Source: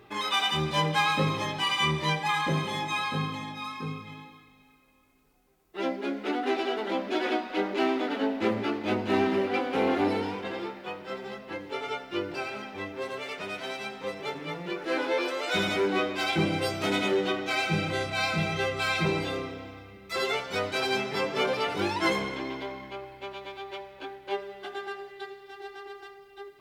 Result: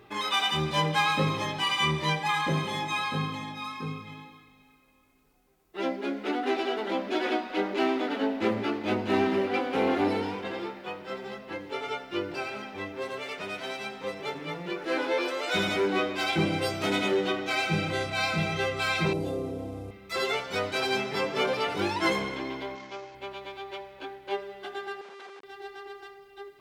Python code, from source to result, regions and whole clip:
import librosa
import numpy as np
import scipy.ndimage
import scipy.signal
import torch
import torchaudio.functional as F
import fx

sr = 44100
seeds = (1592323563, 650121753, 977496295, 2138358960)

y = fx.chain(x, sr, fx.cvsd(bps=64000),
    fx.curve_eq(hz=(590.0, 1700.0, 8400.0), db=(0, -19, -10)),
    fx.env_flatten(amount_pct=50), at=(19.13, 19.91))
y = fx.chain(y, sr, fx.cvsd(bps=32000),
    fx.highpass(hz=210.0, slope=6), at=(22.75, 23.15))
y = fx.chain(y, sr, fx.schmitt(flips_db=-45.5),
    fx.bandpass_edges(low_hz=470.0, high_hz=3900.0), at=(25.01, 25.44))